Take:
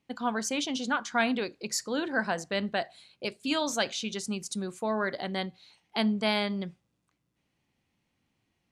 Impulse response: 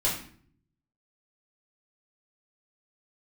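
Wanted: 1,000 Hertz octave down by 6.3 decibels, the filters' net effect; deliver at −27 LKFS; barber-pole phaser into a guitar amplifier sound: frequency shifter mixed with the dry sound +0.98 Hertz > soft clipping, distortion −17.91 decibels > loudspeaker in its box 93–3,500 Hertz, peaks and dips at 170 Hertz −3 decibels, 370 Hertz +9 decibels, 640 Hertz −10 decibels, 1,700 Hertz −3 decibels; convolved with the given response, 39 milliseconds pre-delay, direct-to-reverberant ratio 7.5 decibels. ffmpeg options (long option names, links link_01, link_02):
-filter_complex "[0:a]equalizer=frequency=1000:width_type=o:gain=-5.5,asplit=2[link_01][link_02];[1:a]atrim=start_sample=2205,adelay=39[link_03];[link_02][link_03]afir=irnorm=-1:irlink=0,volume=-17dB[link_04];[link_01][link_04]amix=inputs=2:normalize=0,asplit=2[link_05][link_06];[link_06]afreqshift=0.98[link_07];[link_05][link_07]amix=inputs=2:normalize=1,asoftclip=threshold=-25dB,highpass=93,equalizer=frequency=170:width_type=q:width=4:gain=-3,equalizer=frequency=370:width_type=q:width=4:gain=9,equalizer=frequency=640:width_type=q:width=4:gain=-10,equalizer=frequency=1700:width_type=q:width=4:gain=-3,lowpass=frequency=3500:width=0.5412,lowpass=frequency=3500:width=1.3066,volume=9.5dB"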